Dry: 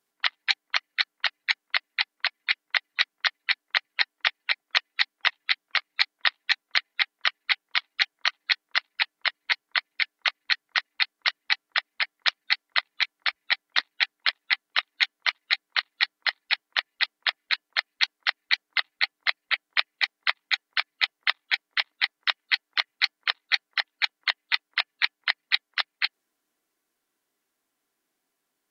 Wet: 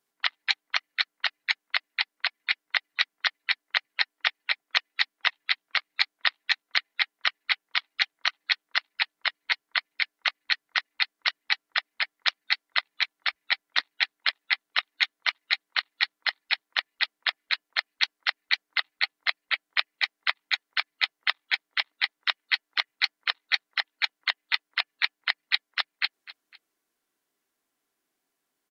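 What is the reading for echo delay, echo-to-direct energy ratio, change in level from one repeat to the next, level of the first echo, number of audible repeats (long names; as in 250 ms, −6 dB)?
253 ms, −18.0 dB, −7.5 dB, −18.5 dB, 2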